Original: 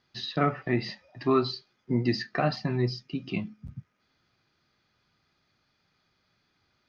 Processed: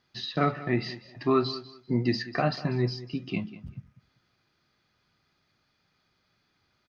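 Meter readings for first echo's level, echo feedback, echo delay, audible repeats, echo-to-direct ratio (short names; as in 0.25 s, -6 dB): -16.5 dB, 21%, 0.194 s, 2, -16.5 dB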